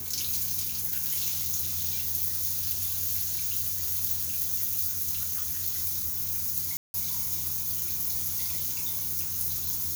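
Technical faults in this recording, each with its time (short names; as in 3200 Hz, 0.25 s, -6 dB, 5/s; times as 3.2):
6.77–6.94 gap 0.171 s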